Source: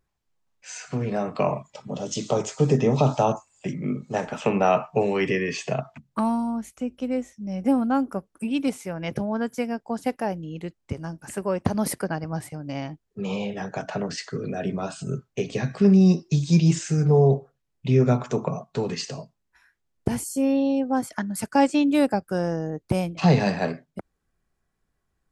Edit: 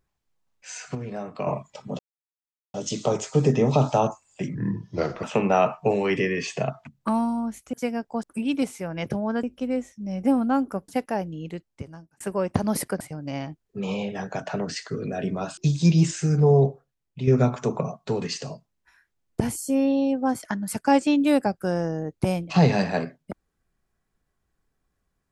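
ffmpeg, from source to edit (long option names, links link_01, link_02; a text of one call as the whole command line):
ffmpeg -i in.wav -filter_complex "[0:a]asplit=14[link_01][link_02][link_03][link_04][link_05][link_06][link_07][link_08][link_09][link_10][link_11][link_12][link_13][link_14];[link_01]atrim=end=0.952[link_15];[link_02]atrim=start=0.948:end=1.472,asetpts=PTS-STARTPTS,volume=-7dB[link_16];[link_03]atrim=start=1.468:end=1.99,asetpts=PTS-STARTPTS,afade=type=out:start_time=0.518:duration=0.004:curve=hsin,apad=pad_dur=0.75[link_17];[link_04]atrim=start=1.99:end=3.804,asetpts=PTS-STARTPTS,afade=type=in:duration=0.004:curve=hsin[link_18];[link_05]atrim=start=3.8:end=4.34,asetpts=PTS-STARTPTS,asetrate=34839,aresample=44100,atrim=end_sample=30144,asetpts=PTS-STARTPTS[link_19];[link_06]atrim=start=4.336:end=6.842[link_20];[link_07]atrim=start=9.488:end=9.992[link_21];[link_08]atrim=start=8.288:end=9.492[link_22];[link_09]atrim=start=6.838:end=8.292[link_23];[link_10]atrim=start=9.988:end=11.31,asetpts=PTS-STARTPTS,afade=type=out:start_time=0.572:duration=0.75[link_24];[link_11]atrim=start=11.31:end=12.112,asetpts=PTS-STARTPTS,afade=type=in:duration=0.004:curve=hsin[link_25];[link_12]atrim=start=12.418:end=14.992[link_26];[link_13]atrim=start=16.248:end=17.95,asetpts=PTS-STARTPTS,afade=type=out:start_time=1.012:duration=0.69:silence=0.398107[link_27];[link_14]atrim=start=17.95,asetpts=PTS-STARTPTS,afade=type=in:duration=0.004:curve=hsin:silence=0.398107[link_28];[link_15][link_16]acrossfade=duration=0.004:curve1=hsin:curve2=hsin[link_29];[link_17][link_18]concat=n=2:v=0:a=1[link_30];[link_29][link_30]acrossfade=duration=0.004:curve1=hsin:curve2=hsin[link_31];[link_31][link_19]acrossfade=duration=0.004:curve1=hsin:curve2=hsin[link_32];[link_32][link_20]acrossfade=duration=0.004:curve1=hsin:curve2=hsin[link_33];[link_33][link_21]acrossfade=duration=0.004:curve1=hsin:curve2=hsin[link_34];[link_34][link_22]acrossfade=duration=0.004:curve1=hsin:curve2=hsin[link_35];[link_35][link_23]acrossfade=duration=0.004:curve1=hsin:curve2=hsin[link_36];[link_24][link_25]concat=n=2:v=0:a=1[link_37];[link_36][link_37]acrossfade=duration=0.004:curve1=hsin:curve2=hsin[link_38];[link_38][link_26]acrossfade=duration=0.004:curve1=hsin:curve2=hsin[link_39];[link_27][link_28]concat=n=2:v=0:a=1[link_40];[link_39][link_40]acrossfade=duration=0.004:curve1=hsin:curve2=hsin" out.wav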